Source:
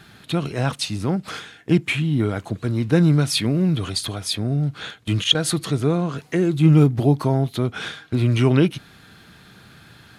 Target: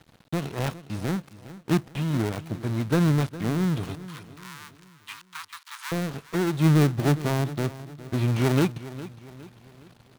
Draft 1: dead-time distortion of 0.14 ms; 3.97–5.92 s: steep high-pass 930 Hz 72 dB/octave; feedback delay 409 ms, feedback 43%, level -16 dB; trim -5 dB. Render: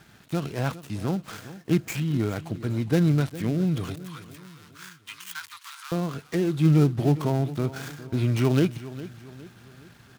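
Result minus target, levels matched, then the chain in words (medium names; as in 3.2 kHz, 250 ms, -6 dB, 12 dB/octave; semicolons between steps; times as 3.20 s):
dead-time distortion: distortion -4 dB
dead-time distortion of 0.45 ms; 3.97–5.92 s: steep high-pass 930 Hz 72 dB/octave; feedback delay 409 ms, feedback 43%, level -16 dB; trim -5 dB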